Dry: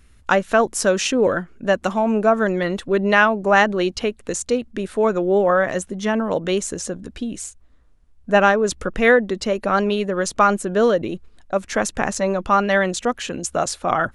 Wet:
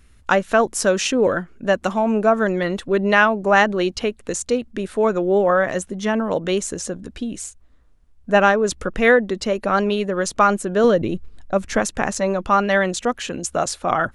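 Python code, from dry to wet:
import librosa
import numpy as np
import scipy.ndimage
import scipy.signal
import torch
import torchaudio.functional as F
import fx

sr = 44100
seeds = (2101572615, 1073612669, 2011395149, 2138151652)

y = fx.low_shelf(x, sr, hz=200.0, db=9.5, at=(10.84, 11.8))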